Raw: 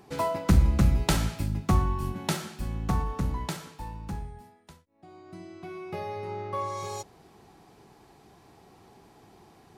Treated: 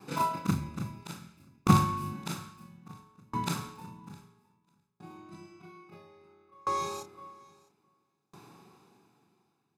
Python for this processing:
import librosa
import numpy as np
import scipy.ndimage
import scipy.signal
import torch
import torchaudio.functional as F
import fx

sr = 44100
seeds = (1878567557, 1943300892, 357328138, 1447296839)

y = fx.frame_reverse(x, sr, frame_ms=83.0)
y = scipy.signal.sosfilt(scipy.signal.butter(4, 130.0, 'highpass', fs=sr, output='sos'), y)
y = y + 0.56 * np.pad(y, (int(0.8 * sr / 1000.0), 0))[:len(y)]
y = fx.echo_feedback(y, sr, ms=658, feedback_pct=24, wet_db=-11.5)
y = fx.tremolo_decay(y, sr, direction='decaying', hz=0.6, depth_db=33)
y = y * 10.0 ** (7.0 / 20.0)